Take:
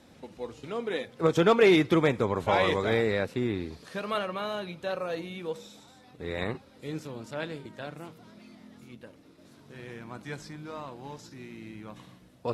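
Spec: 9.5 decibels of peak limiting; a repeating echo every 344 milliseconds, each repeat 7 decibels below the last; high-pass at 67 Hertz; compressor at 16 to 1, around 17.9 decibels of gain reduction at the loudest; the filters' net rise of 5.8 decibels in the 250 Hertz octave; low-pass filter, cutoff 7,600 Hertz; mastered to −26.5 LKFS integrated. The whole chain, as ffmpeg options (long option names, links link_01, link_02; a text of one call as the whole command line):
ffmpeg -i in.wav -af "highpass=67,lowpass=7600,equalizer=frequency=250:width_type=o:gain=8.5,acompressor=threshold=-31dB:ratio=16,alimiter=level_in=6.5dB:limit=-24dB:level=0:latency=1,volume=-6.5dB,aecho=1:1:344|688|1032|1376|1720:0.447|0.201|0.0905|0.0407|0.0183,volume=14dB" out.wav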